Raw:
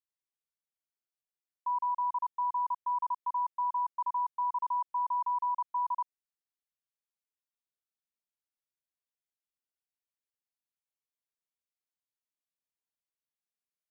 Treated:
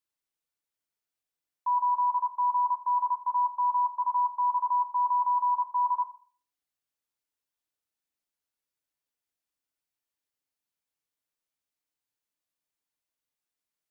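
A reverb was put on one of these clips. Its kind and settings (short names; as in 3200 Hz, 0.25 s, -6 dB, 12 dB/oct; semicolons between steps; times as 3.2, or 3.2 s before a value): FDN reverb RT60 0.44 s, low-frequency decay 0.95×, high-frequency decay 0.75×, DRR 6.5 dB; gain +3.5 dB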